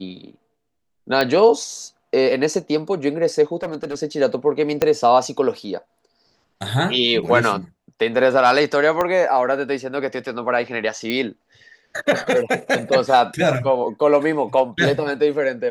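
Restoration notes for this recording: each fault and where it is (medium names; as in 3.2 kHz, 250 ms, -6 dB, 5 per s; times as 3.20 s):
1.21 s: pop -6 dBFS
3.62–3.98 s: clipped -21.5 dBFS
4.82 s: pop -4 dBFS
9.01 s: pop -8 dBFS
11.10 s: pop -11 dBFS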